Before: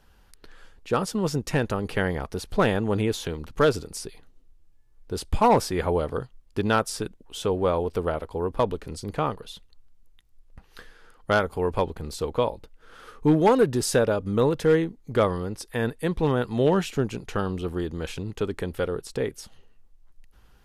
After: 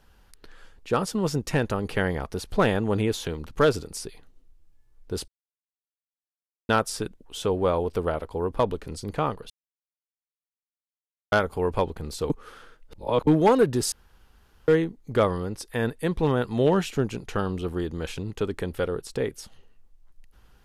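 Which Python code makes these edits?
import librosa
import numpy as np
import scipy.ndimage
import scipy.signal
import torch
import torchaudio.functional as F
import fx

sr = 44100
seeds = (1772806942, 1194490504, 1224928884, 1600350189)

y = fx.edit(x, sr, fx.silence(start_s=5.28, length_s=1.41),
    fx.silence(start_s=9.5, length_s=1.82),
    fx.reverse_span(start_s=12.3, length_s=0.97),
    fx.room_tone_fill(start_s=13.92, length_s=0.76), tone=tone)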